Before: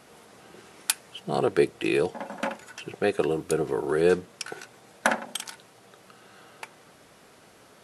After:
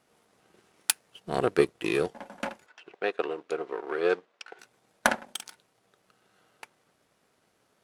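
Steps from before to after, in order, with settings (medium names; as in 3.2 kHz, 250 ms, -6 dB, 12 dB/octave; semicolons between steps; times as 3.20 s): power-law waveshaper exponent 1.4; 2.66–4.59 s: band-pass 440–3600 Hz; trim +3 dB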